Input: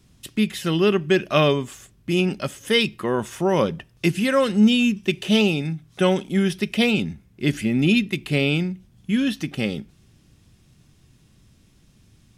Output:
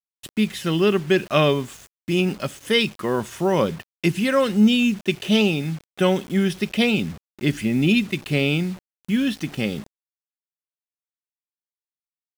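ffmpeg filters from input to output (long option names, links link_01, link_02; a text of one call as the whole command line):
ffmpeg -i in.wav -af "acrusher=bits=6:mix=0:aa=0.000001,highshelf=frequency=10000:gain=-3.5" out.wav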